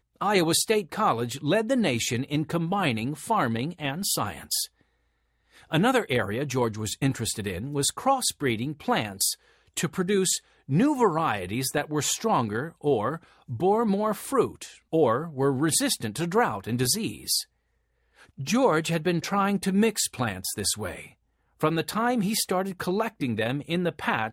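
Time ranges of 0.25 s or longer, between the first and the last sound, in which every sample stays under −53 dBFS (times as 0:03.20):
0:04.81–0:05.53
0:17.45–0:18.17
0:21.14–0:21.60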